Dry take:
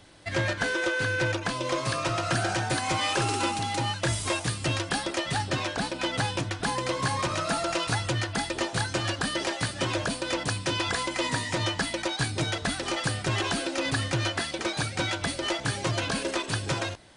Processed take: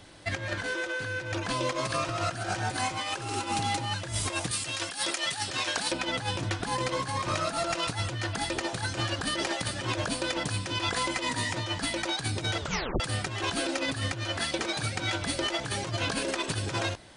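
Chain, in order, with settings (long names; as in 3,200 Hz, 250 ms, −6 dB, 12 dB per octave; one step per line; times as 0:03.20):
0:04.51–0:05.92: spectral tilt +3 dB per octave
compressor whose output falls as the input rises −30 dBFS, ratio −0.5
0:12.60: tape stop 0.40 s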